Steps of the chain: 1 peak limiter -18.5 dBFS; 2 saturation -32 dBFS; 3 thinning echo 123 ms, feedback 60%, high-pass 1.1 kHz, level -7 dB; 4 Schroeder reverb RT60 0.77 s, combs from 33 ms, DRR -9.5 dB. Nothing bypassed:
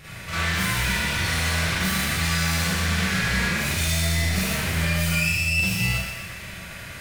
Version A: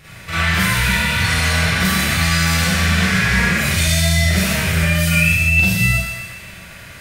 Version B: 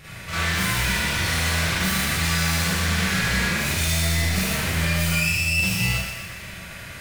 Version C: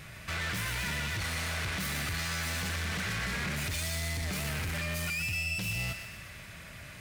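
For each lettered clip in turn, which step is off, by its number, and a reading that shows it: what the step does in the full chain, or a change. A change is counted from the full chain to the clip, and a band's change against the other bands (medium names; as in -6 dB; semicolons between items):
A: 2, distortion -8 dB; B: 1, mean gain reduction 4.0 dB; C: 4, crest factor change -5.5 dB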